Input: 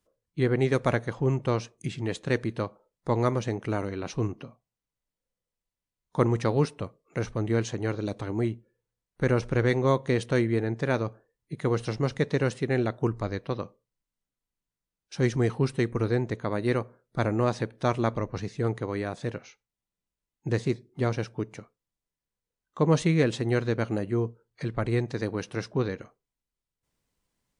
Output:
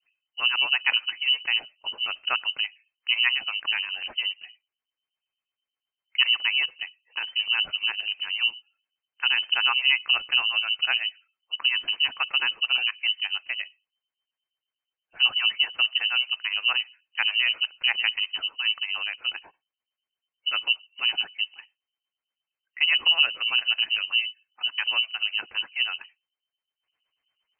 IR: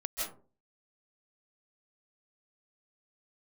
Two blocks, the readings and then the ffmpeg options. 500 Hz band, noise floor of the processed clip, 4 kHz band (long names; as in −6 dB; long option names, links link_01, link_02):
−25.0 dB, below −85 dBFS, +24.0 dB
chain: -filter_complex "[0:a]acrossover=split=490[link_01][link_02];[link_01]aeval=exprs='val(0)*(1-1/2+1/2*cos(2*PI*8.4*n/s))':channel_layout=same[link_03];[link_02]aeval=exprs='val(0)*(1-1/2-1/2*cos(2*PI*8.4*n/s))':channel_layout=same[link_04];[link_03][link_04]amix=inputs=2:normalize=0,lowpass=frequency=2600:width_type=q:width=0.5098,lowpass=frequency=2600:width_type=q:width=0.6013,lowpass=frequency=2600:width_type=q:width=0.9,lowpass=frequency=2600:width_type=q:width=2.563,afreqshift=-3100,volume=6dB"